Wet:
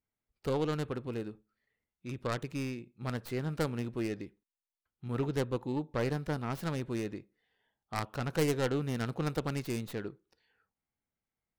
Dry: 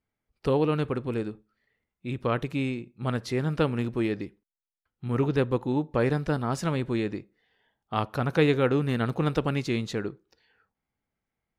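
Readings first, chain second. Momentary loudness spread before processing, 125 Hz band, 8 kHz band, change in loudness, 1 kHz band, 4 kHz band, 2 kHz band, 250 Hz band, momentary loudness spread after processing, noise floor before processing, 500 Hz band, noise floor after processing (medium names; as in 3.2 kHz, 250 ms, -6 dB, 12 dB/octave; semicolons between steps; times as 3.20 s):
9 LU, -7.0 dB, 0.0 dB, -7.5 dB, -7.5 dB, -6.0 dB, -7.0 dB, -8.0 dB, 10 LU, under -85 dBFS, -7.5 dB, under -85 dBFS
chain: tracing distortion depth 0.42 ms; trim -7.5 dB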